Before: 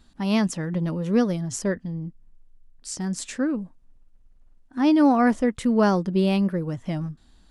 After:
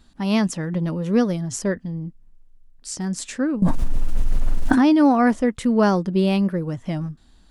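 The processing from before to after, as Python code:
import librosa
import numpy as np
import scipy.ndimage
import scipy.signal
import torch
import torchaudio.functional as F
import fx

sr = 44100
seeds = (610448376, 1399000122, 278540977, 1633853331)

y = fx.env_flatten(x, sr, amount_pct=100, at=(3.62, 4.93))
y = y * librosa.db_to_amplitude(2.0)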